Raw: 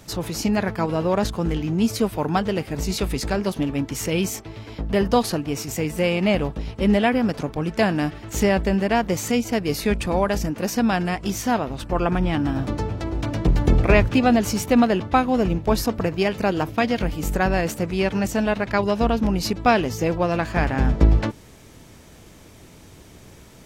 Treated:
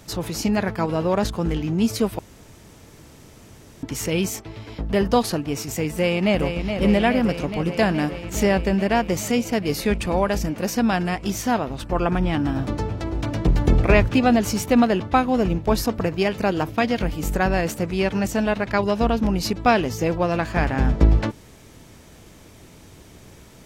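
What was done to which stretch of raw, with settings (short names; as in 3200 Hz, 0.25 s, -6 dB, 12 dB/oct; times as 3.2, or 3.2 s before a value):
2.19–3.83 room tone
5.97–6.78 echo throw 0.42 s, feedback 80%, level -7 dB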